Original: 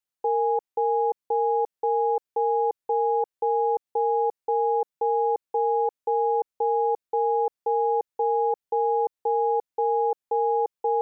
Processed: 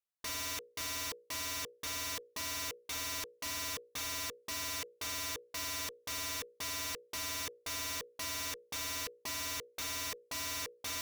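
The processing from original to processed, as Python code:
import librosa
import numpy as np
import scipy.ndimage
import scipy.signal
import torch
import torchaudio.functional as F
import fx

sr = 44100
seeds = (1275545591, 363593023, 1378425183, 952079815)

y = fx.hum_notches(x, sr, base_hz=60, count=9)
y = fx.cheby_harmonics(y, sr, harmonics=(3,), levels_db=(-22,), full_scale_db=-16.0)
y = (np.mod(10.0 ** (29.0 / 20.0) * y + 1.0, 2.0) - 1.0) / 10.0 ** (29.0 / 20.0)
y = y * 10.0 ** (-4.5 / 20.0)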